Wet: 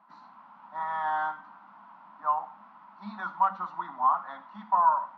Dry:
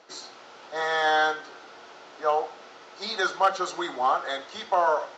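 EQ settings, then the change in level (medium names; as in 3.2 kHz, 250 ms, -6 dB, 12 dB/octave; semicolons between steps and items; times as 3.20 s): two resonant band-passes 450 Hz, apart 2.3 oct; distance through air 190 m; peaking EQ 380 Hz -8.5 dB 0.22 oct; +7.0 dB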